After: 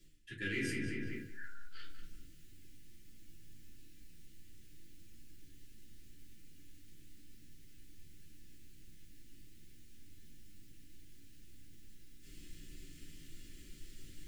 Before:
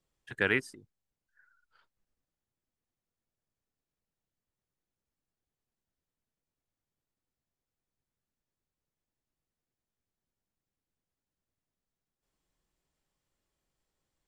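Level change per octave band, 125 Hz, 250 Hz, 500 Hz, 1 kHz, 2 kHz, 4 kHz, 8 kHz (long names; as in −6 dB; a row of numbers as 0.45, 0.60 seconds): +1.5, 0.0, −9.5, −15.0, −8.0, −3.0, +5.0 decibels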